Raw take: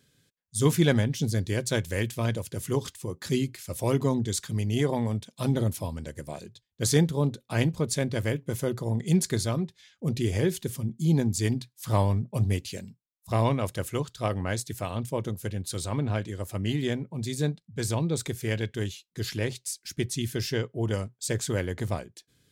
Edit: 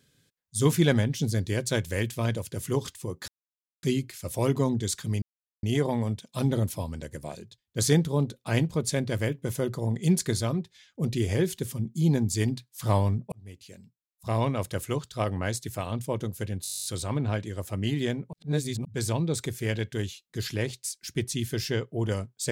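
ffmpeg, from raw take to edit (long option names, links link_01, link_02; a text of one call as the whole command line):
ffmpeg -i in.wav -filter_complex "[0:a]asplit=17[link_01][link_02][link_03][link_04][link_05][link_06][link_07][link_08][link_09][link_10][link_11][link_12][link_13][link_14][link_15][link_16][link_17];[link_01]atrim=end=3.28,asetpts=PTS-STARTPTS,afade=type=out:start_time=3.276:duration=0.004:curve=hsin,apad=pad_dur=0.55[link_18];[link_02]atrim=start=3.28:end=4.67,asetpts=PTS-STARTPTS,afade=type=in:duration=0.004:curve=hsin,afade=type=out:start_time=1.386:duration=0.004:curve=hsin,apad=pad_dur=0.41[link_19];[link_03]atrim=start=4.67:end=12.36,asetpts=PTS-STARTPTS,afade=type=in:duration=0.004:curve=hsin,afade=type=out:start_time=7.686:duration=0.004:curve=hsin[link_20];[link_04]atrim=start=12.36:end=15.692,asetpts=PTS-STARTPTS,afade=type=in:duration=1.37[link_21];[link_05]atrim=start=15.668:end=15.692[link_22];[link_06]atrim=start=15.668:end=15.692[link_23];[link_07]atrim=start=15.668:end=15.692[link_24];[link_08]atrim=start=15.668:end=15.692[link_25];[link_09]atrim=start=15.668:end=15.692[link_26];[link_10]atrim=start=15.668:end=15.692[link_27];[link_11]atrim=start=15.668:end=15.692[link_28];[link_12]atrim=start=15.668:end=15.692[link_29];[link_13]atrim=start=15.668:end=15.692[link_30];[link_14]atrim=start=15.668:end=15.692[link_31];[link_15]atrim=start=15.668:end=17.152[link_32];[link_16]atrim=start=17.148:end=17.672,asetpts=PTS-STARTPTS,areverse[link_33];[link_17]atrim=start=17.668[link_34];[link_18][link_19][link_20][link_21]concat=n=4:v=0:a=1[link_35];[link_35][link_22]acrossfade=duration=0.004:curve1=hsin:curve2=hsin[link_36];[link_36][link_23]acrossfade=duration=0.004:curve1=hsin:curve2=hsin[link_37];[link_37][link_24]acrossfade=duration=0.004:curve1=hsin:curve2=hsin[link_38];[link_38][link_25]acrossfade=duration=0.004:curve1=hsin:curve2=hsin[link_39];[link_39][link_26]acrossfade=duration=0.004:curve1=hsin:curve2=hsin[link_40];[link_40][link_27]acrossfade=duration=0.004:curve1=hsin:curve2=hsin[link_41];[link_41][link_28]acrossfade=duration=0.004:curve1=hsin:curve2=hsin[link_42];[link_42][link_29]acrossfade=duration=0.004:curve1=hsin:curve2=hsin[link_43];[link_43][link_30]acrossfade=duration=0.004:curve1=hsin:curve2=hsin[link_44];[link_44][link_31]acrossfade=duration=0.004:curve1=hsin:curve2=hsin[link_45];[link_45][link_32]acrossfade=duration=0.004:curve1=hsin:curve2=hsin[link_46];[link_46][link_33]acrossfade=duration=0.004:curve1=hsin:curve2=hsin[link_47];[link_47][link_34]acrossfade=duration=0.004:curve1=hsin:curve2=hsin" out.wav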